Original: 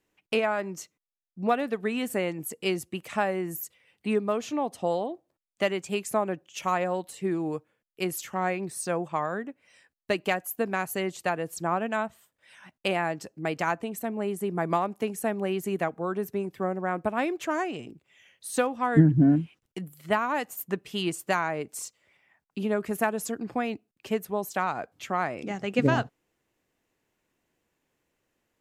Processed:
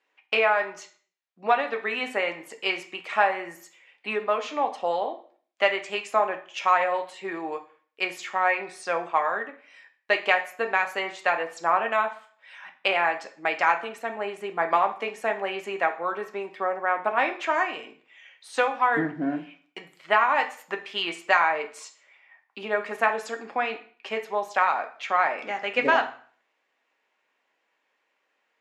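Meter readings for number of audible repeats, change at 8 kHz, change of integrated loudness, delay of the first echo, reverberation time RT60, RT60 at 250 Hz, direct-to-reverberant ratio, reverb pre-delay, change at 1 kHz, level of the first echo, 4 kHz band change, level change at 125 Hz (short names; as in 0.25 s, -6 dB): none, -8.0 dB, +3.0 dB, none, 0.50 s, 0.45 s, 3.5 dB, 3 ms, +6.5 dB, none, +5.0 dB, -19.0 dB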